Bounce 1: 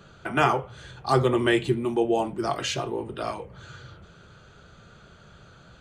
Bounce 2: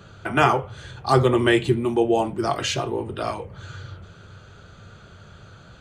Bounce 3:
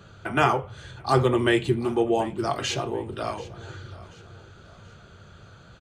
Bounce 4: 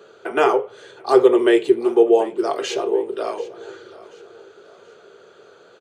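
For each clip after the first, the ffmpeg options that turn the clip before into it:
ffmpeg -i in.wav -af "equalizer=frequency=97:width_type=o:width=0.25:gain=11,volume=3.5dB" out.wav
ffmpeg -i in.wav -af "aecho=1:1:735|1470|2205:0.106|0.0445|0.0187,volume=-3dB" out.wav
ffmpeg -i in.wav -af "highpass=frequency=420:width_type=q:width=5.1" out.wav

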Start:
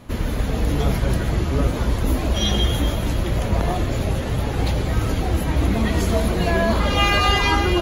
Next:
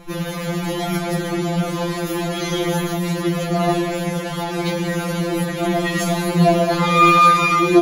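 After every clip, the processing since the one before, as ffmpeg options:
ffmpeg -i in.wav -af "afftfilt=real='re*2.83*eq(mod(b,8),0)':imag='im*2.83*eq(mod(b,8),0)':win_size=2048:overlap=0.75,volume=6dB" out.wav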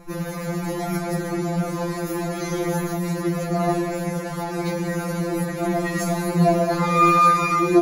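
ffmpeg -i in.wav -af "equalizer=frequency=3200:width=2.7:gain=-14,volume=-3dB" out.wav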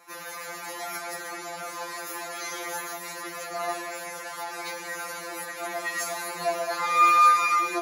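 ffmpeg -i in.wav -af "highpass=1000" out.wav

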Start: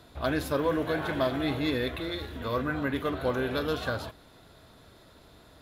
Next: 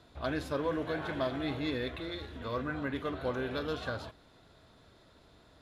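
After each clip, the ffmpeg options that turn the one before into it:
ffmpeg -i in.wav -af "lowpass=8000,volume=-5.5dB" out.wav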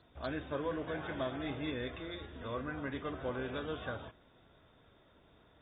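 ffmpeg -i in.wav -af "volume=-4.5dB" -ar 32000 -c:a aac -b:a 16k out.aac

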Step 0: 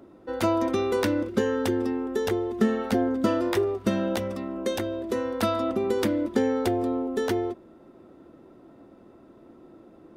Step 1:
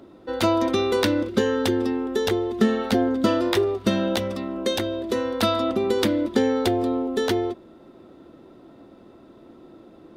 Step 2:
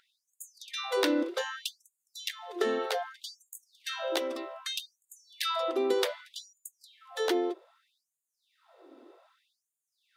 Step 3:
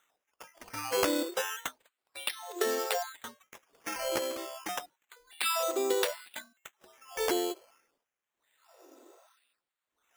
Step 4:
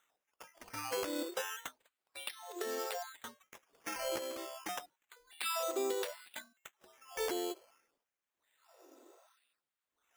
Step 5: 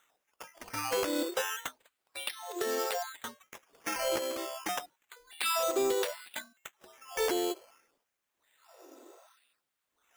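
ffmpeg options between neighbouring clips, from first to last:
ffmpeg -i in.wav -af "equalizer=frequency=3800:width_type=o:width=0.84:gain=7.5,volume=3dB" out.wav
ffmpeg -i in.wav -af "afftfilt=real='re*gte(b*sr/1024,240*pow(6700/240,0.5+0.5*sin(2*PI*0.64*pts/sr)))':imag='im*gte(b*sr/1024,240*pow(6700/240,0.5+0.5*sin(2*PI*0.64*pts/sr)))':win_size=1024:overlap=0.75,volume=-4.5dB" out.wav
ffmpeg -i in.wav -af "lowpass=frequency=8600:width=0.5412,lowpass=frequency=8600:width=1.3066,acrusher=samples=9:mix=1:aa=0.000001:lfo=1:lforange=5.4:lforate=0.3,bass=frequency=250:gain=-12,treble=frequency=4000:gain=4" out.wav
ffmpeg -i in.wav -af "alimiter=limit=-19.5dB:level=0:latency=1:release=263,volume=-4dB" out.wav
ffmpeg -i in.wav -af "asoftclip=type=hard:threshold=-29dB,volume=6.5dB" out.wav

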